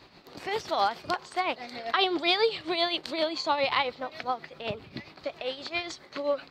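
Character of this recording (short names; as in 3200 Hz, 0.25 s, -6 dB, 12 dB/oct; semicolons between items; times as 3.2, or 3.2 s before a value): tremolo triangle 7.5 Hz, depth 65%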